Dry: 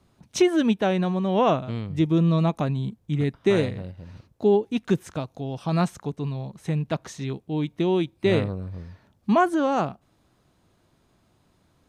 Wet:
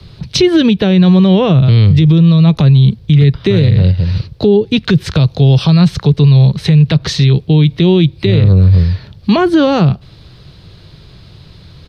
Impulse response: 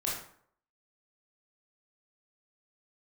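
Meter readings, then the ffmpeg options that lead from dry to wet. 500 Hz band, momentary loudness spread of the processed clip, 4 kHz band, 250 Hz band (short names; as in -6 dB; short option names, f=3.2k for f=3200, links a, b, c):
+9.0 dB, 6 LU, +17.5 dB, +13.5 dB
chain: -filter_complex "[0:a]firequalizer=gain_entry='entry(150,0);entry(240,-15);entry(430,-7);entry(710,-15);entry(1800,-8);entry(4400,3);entry(6700,-18)':delay=0.05:min_phase=1,acrossover=split=150|350[a][b][c];[a]acompressor=threshold=-31dB:ratio=4[d];[b]acompressor=threshold=-35dB:ratio=4[e];[c]acompressor=threshold=-42dB:ratio=4[f];[d][e][f]amix=inputs=3:normalize=0,alimiter=level_in=30.5dB:limit=-1dB:release=50:level=0:latency=1,volume=-1dB"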